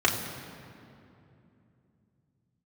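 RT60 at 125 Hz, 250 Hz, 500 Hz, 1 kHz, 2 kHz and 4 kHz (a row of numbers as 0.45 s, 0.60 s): 4.5 s, 4.1 s, 3.0 s, 2.5 s, 2.2 s, 1.7 s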